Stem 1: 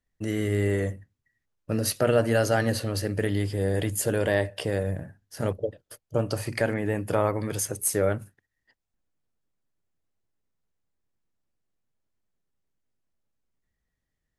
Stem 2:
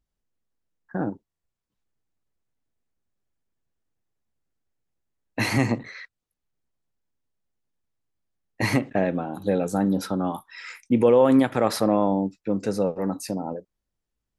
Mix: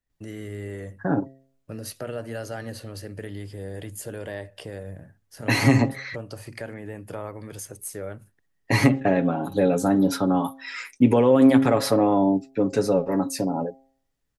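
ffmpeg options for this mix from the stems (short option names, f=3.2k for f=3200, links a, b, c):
-filter_complex "[0:a]acompressor=threshold=-39dB:ratio=1.5,volume=-3.5dB[a];[1:a]aecho=1:1:7.2:0.64,bandreject=f=133.8:t=h:w=4,bandreject=f=267.6:t=h:w=4,bandreject=f=401.4:t=h:w=4,bandreject=f=535.2:t=h:w=4,bandreject=f=669:t=h:w=4,bandreject=f=802.8:t=h:w=4,adelay=100,volume=3dB[b];[a][b]amix=inputs=2:normalize=0,acrossover=split=400[c][d];[d]acompressor=threshold=-20dB:ratio=4[e];[c][e]amix=inputs=2:normalize=0"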